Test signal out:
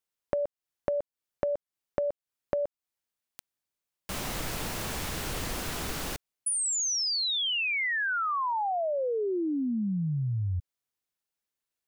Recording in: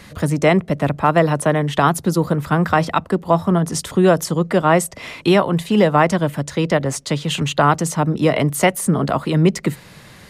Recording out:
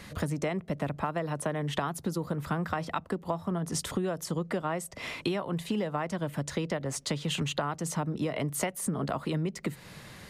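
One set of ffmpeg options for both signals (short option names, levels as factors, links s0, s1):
-af "acompressor=threshold=0.0794:ratio=16,volume=0.562"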